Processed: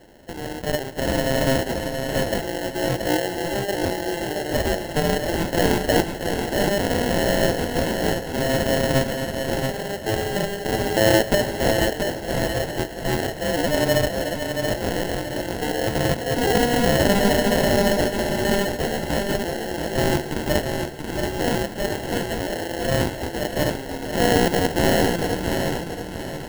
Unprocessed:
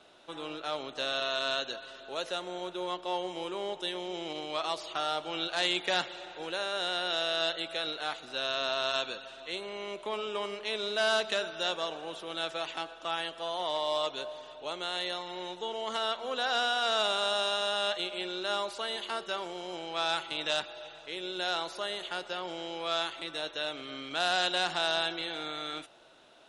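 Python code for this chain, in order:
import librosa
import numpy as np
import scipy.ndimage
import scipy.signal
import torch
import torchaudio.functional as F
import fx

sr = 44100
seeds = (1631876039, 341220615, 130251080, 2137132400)

y = fx.dynamic_eq(x, sr, hz=830.0, q=0.95, threshold_db=-39.0, ratio=4.0, max_db=3)
y = fx.sample_hold(y, sr, seeds[0], rate_hz=1200.0, jitter_pct=0)
y = fx.echo_feedback(y, sr, ms=679, feedback_pct=36, wet_db=-5.5)
y = y * 10.0 ** (9.0 / 20.0)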